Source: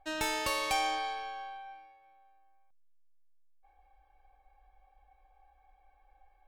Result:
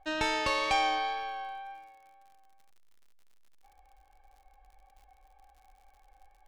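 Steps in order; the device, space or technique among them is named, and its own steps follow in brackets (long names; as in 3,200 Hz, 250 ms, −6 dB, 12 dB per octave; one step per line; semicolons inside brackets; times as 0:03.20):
lo-fi chain (low-pass filter 4,900 Hz 12 dB per octave; tape wow and flutter 12 cents; surface crackle 72 per second −55 dBFS)
level +3.5 dB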